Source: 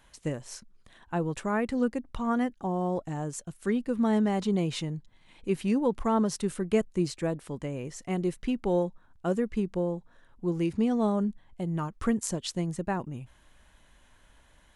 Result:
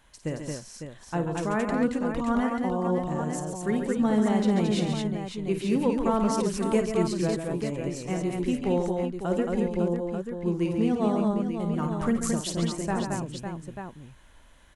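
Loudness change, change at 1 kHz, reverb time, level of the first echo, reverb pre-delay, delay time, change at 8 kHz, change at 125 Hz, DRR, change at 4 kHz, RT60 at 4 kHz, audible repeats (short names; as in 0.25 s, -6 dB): +2.5 dB, +3.0 dB, none, -9.5 dB, none, 52 ms, +3.0 dB, +3.0 dB, none, +3.0 dB, none, 5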